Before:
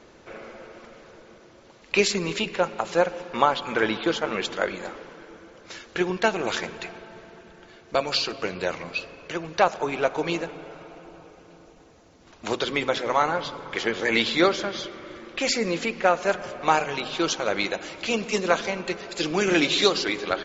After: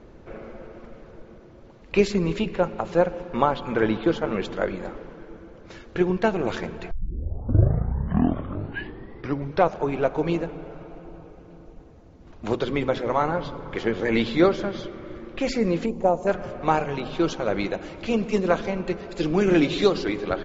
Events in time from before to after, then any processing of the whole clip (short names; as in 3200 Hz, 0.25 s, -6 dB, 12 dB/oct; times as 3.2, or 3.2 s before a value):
6.91 tape start 2.91 s
15.86–16.27 EQ curve 950 Hz 0 dB, 1500 Hz -19 dB, 5100 Hz -8 dB, 7900 Hz +10 dB
whole clip: tilt -3.5 dB/oct; gain -2 dB